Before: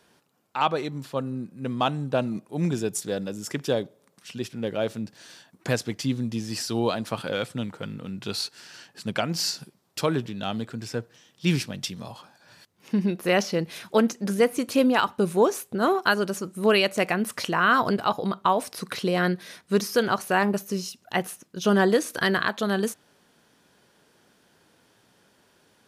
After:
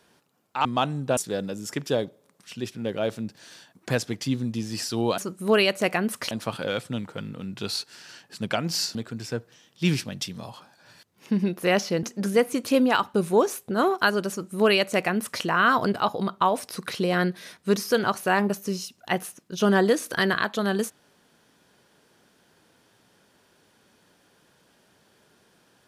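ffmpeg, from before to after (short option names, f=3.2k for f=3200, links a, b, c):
-filter_complex "[0:a]asplit=7[a][b][c][d][e][f][g];[a]atrim=end=0.652[h];[b]atrim=start=1.688:end=2.212[i];[c]atrim=start=2.948:end=6.962[j];[d]atrim=start=16.338:end=17.472[k];[e]atrim=start=6.958:end=9.602[l];[f]atrim=start=10.568:end=13.652[m];[g]atrim=start=14.068[n];[h][i]acrossfade=d=0.004:c1=hsin:c2=hsin[o];[o][j]acrossfade=d=0.004:c1=hsin:c2=hsin[p];[p][k]acrossfade=d=0.004:c1=hsin:c2=hsin[q];[q][l]acrossfade=d=0.004:c1=hsin:c2=hsin[r];[r][m]acrossfade=d=0.004:c1=hsin:c2=hsin[s];[s][n]acrossfade=d=0.004:c1=hsin:c2=hsin"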